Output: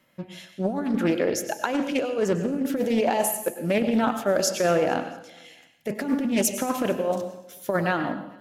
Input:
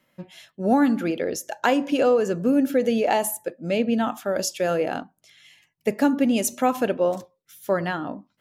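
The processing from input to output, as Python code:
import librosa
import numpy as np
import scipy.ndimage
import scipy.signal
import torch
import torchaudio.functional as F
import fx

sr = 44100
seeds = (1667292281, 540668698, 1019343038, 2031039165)

y = fx.over_compress(x, sr, threshold_db=-22.0, ratio=-0.5)
y = fx.echo_feedback(y, sr, ms=225, feedback_pct=50, wet_db=-23.5)
y = fx.rev_plate(y, sr, seeds[0], rt60_s=0.63, hf_ratio=1.0, predelay_ms=85, drr_db=9.0)
y = fx.doppler_dist(y, sr, depth_ms=0.26)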